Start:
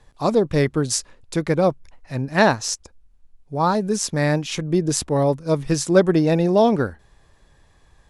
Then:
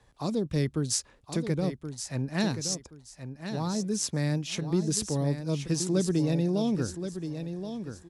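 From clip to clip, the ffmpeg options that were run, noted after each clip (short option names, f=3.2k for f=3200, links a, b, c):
-filter_complex "[0:a]highpass=41,acrossover=split=320|3000[a][b][c];[b]acompressor=threshold=-31dB:ratio=6[d];[a][d][c]amix=inputs=3:normalize=0,asplit=2[e][f];[f]aecho=0:1:1075|2150|3225:0.355|0.0852|0.0204[g];[e][g]amix=inputs=2:normalize=0,volume=-5.5dB"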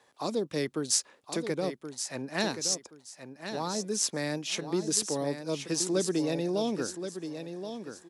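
-af "highpass=340,volume=2.5dB"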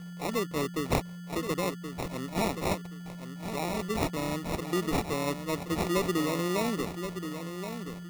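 -filter_complex "[0:a]acrossover=split=670[a][b];[b]acompressor=mode=upward:threshold=-55dB:ratio=2.5[c];[a][c]amix=inputs=2:normalize=0,aeval=exprs='val(0)+0.0112*sin(2*PI*1400*n/s)':c=same,acrusher=samples=28:mix=1:aa=0.000001"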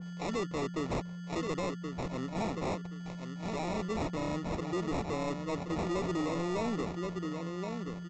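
-af "aresample=16000,asoftclip=type=hard:threshold=-29.5dB,aresample=44100,adynamicequalizer=threshold=0.00316:dfrequency=1800:dqfactor=0.7:tfrequency=1800:tqfactor=0.7:attack=5:release=100:ratio=0.375:range=2.5:mode=cutabove:tftype=highshelf"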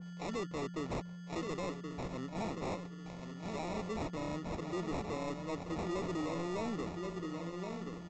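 -af "aecho=1:1:1141|2282|3423:0.266|0.0745|0.0209,volume=-4.5dB"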